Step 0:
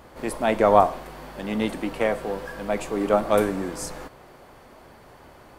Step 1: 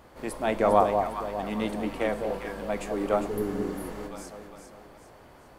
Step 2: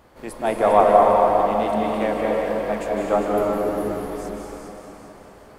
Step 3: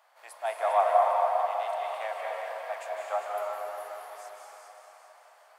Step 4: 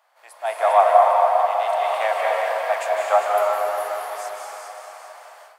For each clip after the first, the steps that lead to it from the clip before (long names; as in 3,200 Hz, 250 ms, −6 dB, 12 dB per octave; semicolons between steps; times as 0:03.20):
delay that swaps between a low-pass and a high-pass 201 ms, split 930 Hz, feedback 64%, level −4 dB; healed spectral selection 0:03.30–0:04.00, 490–9,500 Hz after; level −5 dB
dynamic equaliser 780 Hz, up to +6 dB, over −34 dBFS, Q 0.96; convolution reverb RT60 3.3 s, pre-delay 149 ms, DRR −2 dB
Chebyshev high-pass filter 660 Hz, order 4; level −7 dB
automatic gain control gain up to 13.5 dB